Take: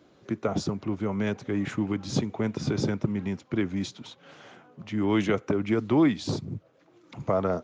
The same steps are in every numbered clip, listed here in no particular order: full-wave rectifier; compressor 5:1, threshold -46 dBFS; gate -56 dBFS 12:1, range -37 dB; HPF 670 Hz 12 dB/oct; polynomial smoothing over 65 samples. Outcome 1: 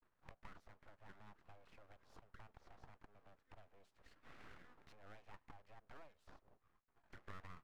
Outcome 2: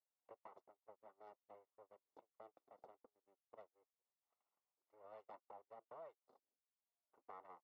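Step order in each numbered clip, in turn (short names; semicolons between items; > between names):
polynomial smoothing > gate > compressor > HPF > full-wave rectifier; full-wave rectifier > polynomial smoothing > compressor > HPF > gate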